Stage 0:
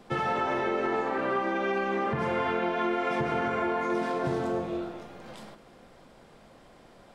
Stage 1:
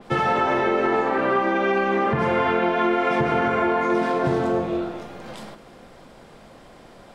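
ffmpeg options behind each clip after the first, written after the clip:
-af "adynamicequalizer=threshold=0.00355:dfrequency=4200:dqfactor=0.7:tfrequency=4200:tqfactor=0.7:attack=5:release=100:ratio=0.375:range=2:mode=cutabove:tftype=highshelf,volume=7.5dB"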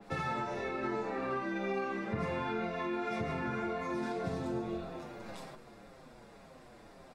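-filter_complex "[0:a]acrossover=split=220|3000[a][b][c];[b]acompressor=threshold=-30dB:ratio=3[d];[a][d][c]amix=inputs=3:normalize=0,bandreject=f=3.1k:w=8,asplit=2[e][f];[f]adelay=6.7,afreqshift=-1.9[g];[e][g]amix=inputs=2:normalize=1,volume=-5dB"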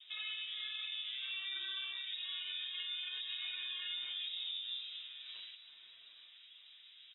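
-filter_complex "[0:a]acrossover=split=2500[a][b];[a]alimiter=level_in=5.5dB:limit=-24dB:level=0:latency=1:release=146,volume=-5.5dB[c];[b]acrusher=samples=16:mix=1:aa=0.000001:lfo=1:lforange=25.6:lforate=0.46[d];[c][d]amix=inputs=2:normalize=0,lowpass=f=3.3k:t=q:w=0.5098,lowpass=f=3.3k:t=q:w=0.6013,lowpass=f=3.3k:t=q:w=0.9,lowpass=f=3.3k:t=q:w=2.563,afreqshift=-3900,volume=-4dB"

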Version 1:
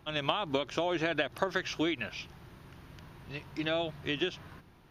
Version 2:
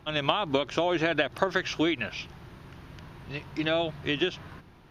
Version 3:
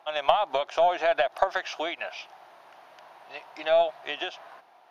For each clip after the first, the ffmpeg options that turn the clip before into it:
-af "highshelf=f=9.9k:g=-9,volume=5dB"
-af "highpass=f=710:t=q:w=4.9,aeval=exprs='0.794*(cos(1*acos(clip(val(0)/0.794,-1,1)))-cos(1*PI/2))+0.0251*(cos(4*acos(clip(val(0)/0.794,-1,1)))-cos(4*PI/2))':c=same,volume=-3.5dB"

